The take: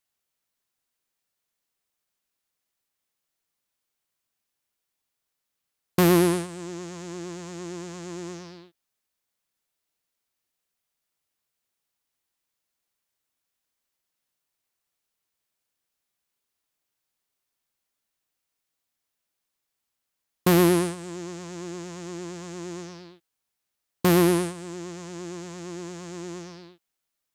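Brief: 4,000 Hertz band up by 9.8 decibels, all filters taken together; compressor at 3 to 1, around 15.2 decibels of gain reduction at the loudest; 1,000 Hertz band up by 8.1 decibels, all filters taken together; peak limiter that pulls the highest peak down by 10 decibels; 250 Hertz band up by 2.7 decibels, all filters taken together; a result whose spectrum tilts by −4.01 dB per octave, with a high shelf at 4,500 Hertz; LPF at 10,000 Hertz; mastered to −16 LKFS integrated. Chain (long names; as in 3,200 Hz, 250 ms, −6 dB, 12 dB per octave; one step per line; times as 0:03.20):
low-pass filter 10,000 Hz
parametric band 250 Hz +4 dB
parametric band 1,000 Hz +9 dB
parametric band 4,000 Hz +8.5 dB
high-shelf EQ 4,500 Hz +6.5 dB
downward compressor 3 to 1, threshold −33 dBFS
level +21 dB
brickwall limiter −2 dBFS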